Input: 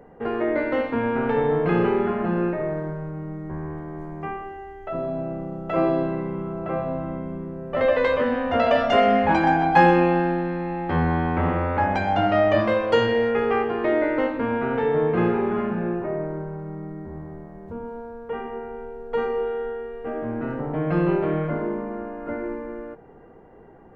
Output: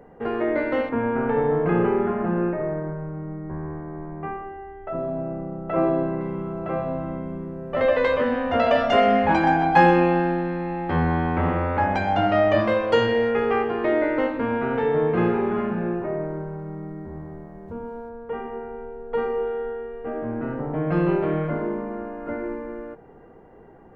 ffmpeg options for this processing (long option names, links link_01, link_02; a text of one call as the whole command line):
ffmpeg -i in.wav -filter_complex "[0:a]asettb=1/sr,asplit=3[link_01][link_02][link_03];[link_01]atrim=end=0.894[link_04];[link_02]atrim=start=0.89:end=6.21,asetpts=PTS-STARTPTS,afade=type=in:duration=0.004:curve=qsin,afade=type=out:start_time=5.316:duration=0.004:curve=qsin,lowpass=2000[link_05];[link_03]atrim=start=6.206[link_06];[link_04][link_05]acrossfade=duration=0.004:curve1=hsin:curve2=qsin[link_07];[link_07][link_06]acrossfade=duration=0.004:curve1=qsin:curve2=hsin,asettb=1/sr,asplit=3[link_08][link_09][link_10];[link_08]atrim=end=18.094[link_11];[link_09]atrim=start=18.09:end=20.92,asetpts=PTS-STARTPTS,afade=type=in:duration=0.004:curve=qsin,afade=type=out:start_time=2.826:duration=0.004:curve=qsin,lowpass=frequency=2500:poles=1[link_12];[link_10]atrim=start=20.916[link_13];[link_11][link_12]acrossfade=duration=0.004:curve1=hsin:curve2=qsin[link_14];[link_14][link_13]acrossfade=duration=0.004:curve1=qsin:curve2=hsin" out.wav